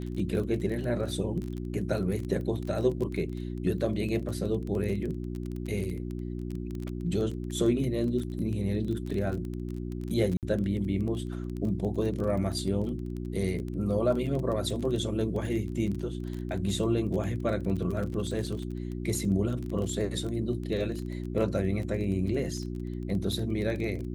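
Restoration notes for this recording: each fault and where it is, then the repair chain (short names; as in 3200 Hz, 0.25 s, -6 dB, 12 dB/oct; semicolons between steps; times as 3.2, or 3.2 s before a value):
crackle 22/s -33 dBFS
hum 60 Hz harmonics 6 -35 dBFS
10.37–10.43 gap 58 ms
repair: de-click; de-hum 60 Hz, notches 6; interpolate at 10.37, 58 ms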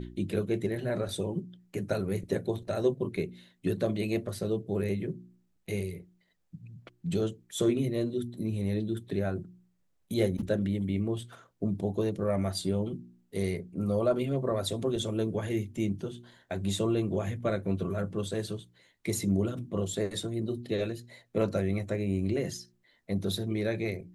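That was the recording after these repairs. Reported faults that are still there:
none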